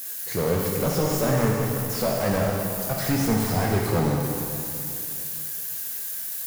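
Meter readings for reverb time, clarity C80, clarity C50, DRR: 2.8 s, 1.5 dB, 0.0 dB, -2.0 dB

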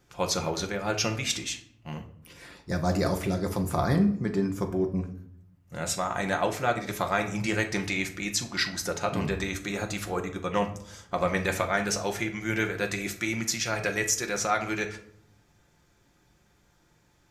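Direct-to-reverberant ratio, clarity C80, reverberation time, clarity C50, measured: 3.5 dB, 15.5 dB, 0.70 s, 11.5 dB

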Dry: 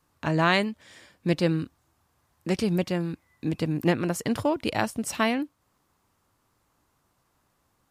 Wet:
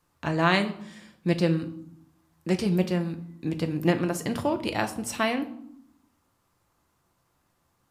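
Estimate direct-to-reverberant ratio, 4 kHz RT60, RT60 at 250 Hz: 6.5 dB, 0.50 s, 1.0 s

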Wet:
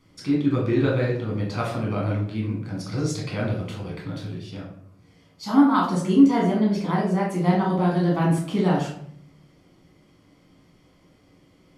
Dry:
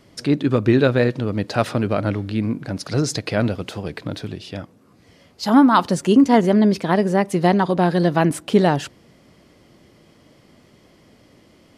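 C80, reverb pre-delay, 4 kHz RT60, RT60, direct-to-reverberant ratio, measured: 8.5 dB, 9 ms, 0.40 s, 0.65 s, -3.5 dB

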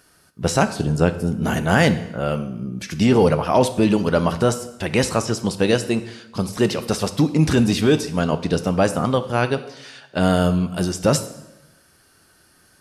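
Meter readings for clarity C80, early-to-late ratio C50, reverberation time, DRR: 15.5 dB, 13.0 dB, 0.90 s, 10.0 dB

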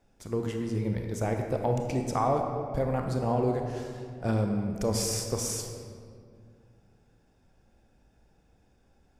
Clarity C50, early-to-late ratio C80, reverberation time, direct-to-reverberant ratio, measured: 4.0 dB, 5.5 dB, 2.3 s, 3.0 dB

